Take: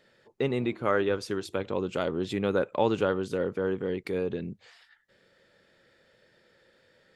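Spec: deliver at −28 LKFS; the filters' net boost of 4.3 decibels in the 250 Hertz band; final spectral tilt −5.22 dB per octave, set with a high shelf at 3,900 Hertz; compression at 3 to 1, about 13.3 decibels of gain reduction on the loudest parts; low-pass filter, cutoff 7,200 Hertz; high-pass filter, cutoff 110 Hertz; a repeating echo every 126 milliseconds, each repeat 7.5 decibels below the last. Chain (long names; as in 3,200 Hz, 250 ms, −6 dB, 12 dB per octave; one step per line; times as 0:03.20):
high-pass filter 110 Hz
low-pass filter 7,200 Hz
parametric band 250 Hz +6 dB
high-shelf EQ 3,900 Hz +4.5 dB
downward compressor 3 to 1, threshold −37 dBFS
repeating echo 126 ms, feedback 42%, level −7.5 dB
level +9.5 dB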